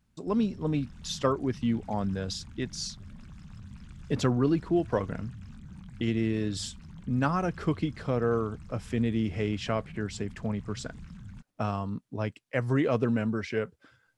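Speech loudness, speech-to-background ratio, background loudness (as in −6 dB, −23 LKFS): −30.5 LKFS, 17.0 dB, −47.5 LKFS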